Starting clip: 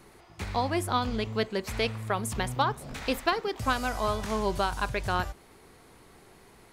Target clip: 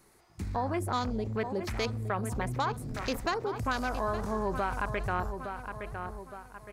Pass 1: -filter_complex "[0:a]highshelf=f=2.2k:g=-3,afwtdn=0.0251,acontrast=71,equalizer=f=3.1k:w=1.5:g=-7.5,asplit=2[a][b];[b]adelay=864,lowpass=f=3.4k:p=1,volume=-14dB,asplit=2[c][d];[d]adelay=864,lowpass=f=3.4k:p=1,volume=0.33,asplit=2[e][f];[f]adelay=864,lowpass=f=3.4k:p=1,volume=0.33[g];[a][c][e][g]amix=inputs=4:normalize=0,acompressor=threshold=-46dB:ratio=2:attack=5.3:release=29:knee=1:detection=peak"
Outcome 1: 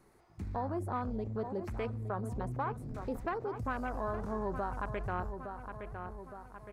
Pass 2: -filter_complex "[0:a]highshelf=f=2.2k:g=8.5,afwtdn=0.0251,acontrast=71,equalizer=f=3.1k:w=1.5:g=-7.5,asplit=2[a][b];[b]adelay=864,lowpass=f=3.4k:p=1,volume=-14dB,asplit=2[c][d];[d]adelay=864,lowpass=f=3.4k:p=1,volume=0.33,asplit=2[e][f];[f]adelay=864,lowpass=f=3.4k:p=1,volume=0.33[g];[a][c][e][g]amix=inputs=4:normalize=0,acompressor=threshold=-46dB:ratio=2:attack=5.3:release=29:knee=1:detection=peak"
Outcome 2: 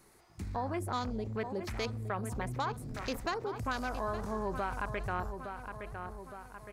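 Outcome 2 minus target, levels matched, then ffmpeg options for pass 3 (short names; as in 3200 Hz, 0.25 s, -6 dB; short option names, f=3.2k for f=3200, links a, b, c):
compressor: peak gain reduction +4 dB
-filter_complex "[0:a]highshelf=f=2.2k:g=8.5,afwtdn=0.0251,acontrast=71,equalizer=f=3.1k:w=1.5:g=-7.5,asplit=2[a][b];[b]adelay=864,lowpass=f=3.4k:p=1,volume=-14dB,asplit=2[c][d];[d]adelay=864,lowpass=f=3.4k:p=1,volume=0.33,asplit=2[e][f];[f]adelay=864,lowpass=f=3.4k:p=1,volume=0.33[g];[a][c][e][g]amix=inputs=4:normalize=0,acompressor=threshold=-38dB:ratio=2:attack=5.3:release=29:knee=1:detection=peak"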